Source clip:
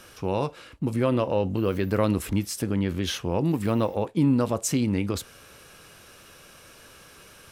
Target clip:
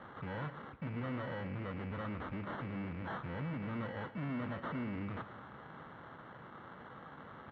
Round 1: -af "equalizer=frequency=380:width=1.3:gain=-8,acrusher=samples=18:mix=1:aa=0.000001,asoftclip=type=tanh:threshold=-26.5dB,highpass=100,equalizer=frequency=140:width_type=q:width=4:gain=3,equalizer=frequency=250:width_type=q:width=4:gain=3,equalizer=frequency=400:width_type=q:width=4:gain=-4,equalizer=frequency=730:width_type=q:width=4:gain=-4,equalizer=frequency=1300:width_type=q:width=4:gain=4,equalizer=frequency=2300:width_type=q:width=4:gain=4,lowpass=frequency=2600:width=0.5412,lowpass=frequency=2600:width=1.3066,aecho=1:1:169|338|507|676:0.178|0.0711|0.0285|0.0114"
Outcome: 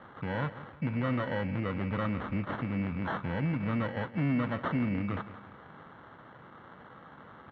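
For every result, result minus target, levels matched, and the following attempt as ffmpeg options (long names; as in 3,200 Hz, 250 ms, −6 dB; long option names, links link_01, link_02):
echo 55 ms late; soft clipping: distortion −7 dB
-af "equalizer=frequency=380:width=1.3:gain=-8,acrusher=samples=18:mix=1:aa=0.000001,asoftclip=type=tanh:threshold=-26.5dB,highpass=100,equalizer=frequency=140:width_type=q:width=4:gain=3,equalizer=frequency=250:width_type=q:width=4:gain=3,equalizer=frequency=400:width_type=q:width=4:gain=-4,equalizer=frequency=730:width_type=q:width=4:gain=-4,equalizer=frequency=1300:width_type=q:width=4:gain=4,equalizer=frequency=2300:width_type=q:width=4:gain=4,lowpass=frequency=2600:width=0.5412,lowpass=frequency=2600:width=1.3066,aecho=1:1:114|228|342|456:0.178|0.0711|0.0285|0.0114"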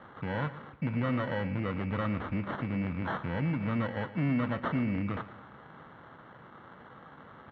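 soft clipping: distortion −7 dB
-af "equalizer=frequency=380:width=1.3:gain=-8,acrusher=samples=18:mix=1:aa=0.000001,asoftclip=type=tanh:threshold=-38.5dB,highpass=100,equalizer=frequency=140:width_type=q:width=4:gain=3,equalizer=frequency=250:width_type=q:width=4:gain=3,equalizer=frequency=400:width_type=q:width=4:gain=-4,equalizer=frequency=730:width_type=q:width=4:gain=-4,equalizer=frequency=1300:width_type=q:width=4:gain=4,equalizer=frequency=2300:width_type=q:width=4:gain=4,lowpass=frequency=2600:width=0.5412,lowpass=frequency=2600:width=1.3066,aecho=1:1:114|228|342|456:0.178|0.0711|0.0285|0.0114"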